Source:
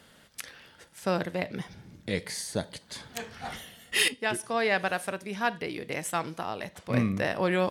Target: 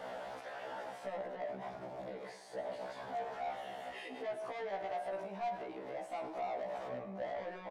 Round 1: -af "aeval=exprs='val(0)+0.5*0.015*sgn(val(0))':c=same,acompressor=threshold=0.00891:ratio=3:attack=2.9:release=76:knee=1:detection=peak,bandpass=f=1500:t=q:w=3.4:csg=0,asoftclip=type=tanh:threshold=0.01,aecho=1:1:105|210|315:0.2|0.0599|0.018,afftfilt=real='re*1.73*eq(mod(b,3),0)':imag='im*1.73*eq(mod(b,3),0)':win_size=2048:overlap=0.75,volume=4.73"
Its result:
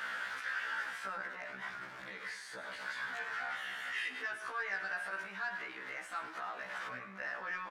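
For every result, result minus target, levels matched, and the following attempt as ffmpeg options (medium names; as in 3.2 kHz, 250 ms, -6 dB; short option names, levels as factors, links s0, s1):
500 Hz band -14.0 dB; saturation: distortion -9 dB
-af "aeval=exprs='val(0)+0.5*0.015*sgn(val(0))':c=same,acompressor=threshold=0.00891:ratio=3:attack=2.9:release=76:knee=1:detection=peak,bandpass=f=680:t=q:w=3.4:csg=0,asoftclip=type=tanh:threshold=0.01,aecho=1:1:105|210|315:0.2|0.0599|0.018,afftfilt=real='re*1.73*eq(mod(b,3),0)':imag='im*1.73*eq(mod(b,3),0)':win_size=2048:overlap=0.75,volume=4.73"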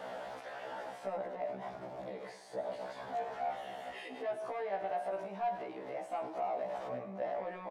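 saturation: distortion -8 dB
-af "aeval=exprs='val(0)+0.5*0.015*sgn(val(0))':c=same,acompressor=threshold=0.00891:ratio=3:attack=2.9:release=76:knee=1:detection=peak,bandpass=f=680:t=q:w=3.4:csg=0,asoftclip=type=tanh:threshold=0.00447,aecho=1:1:105|210|315:0.2|0.0599|0.018,afftfilt=real='re*1.73*eq(mod(b,3),0)':imag='im*1.73*eq(mod(b,3),0)':win_size=2048:overlap=0.75,volume=4.73"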